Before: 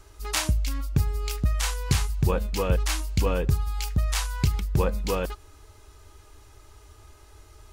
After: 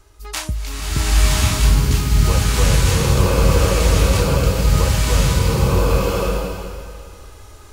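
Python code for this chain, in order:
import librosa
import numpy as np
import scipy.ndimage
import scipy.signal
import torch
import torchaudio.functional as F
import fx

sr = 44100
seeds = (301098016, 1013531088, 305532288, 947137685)

y = fx.rev_bloom(x, sr, seeds[0], attack_ms=1080, drr_db=-10.0)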